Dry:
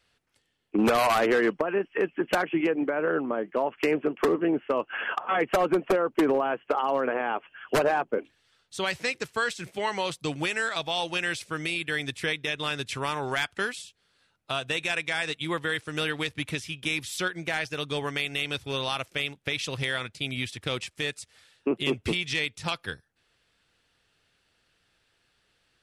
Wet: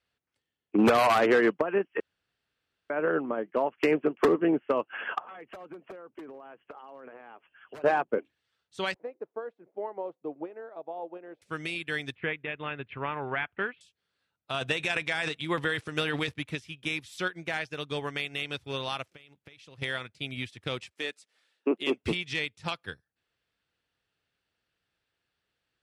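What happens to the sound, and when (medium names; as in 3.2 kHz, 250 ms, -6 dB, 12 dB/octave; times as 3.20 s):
2.00–2.90 s: room tone
5.22–7.84 s: compression 8:1, threshold -35 dBFS
8.94–11.42 s: Butterworth band-pass 480 Hz, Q 0.98
12.15–13.81 s: steep low-pass 2.8 kHz
14.54–16.34 s: transient shaper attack +4 dB, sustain +10 dB
19.14–19.82 s: compression 16:1, threshold -37 dBFS
20.92–22.03 s: high-pass 230 Hz 24 dB/octave
whole clip: high-pass 44 Hz; treble shelf 5.9 kHz -8 dB; upward expansion 1.5:1, over -46 dBFS; trim +2 dB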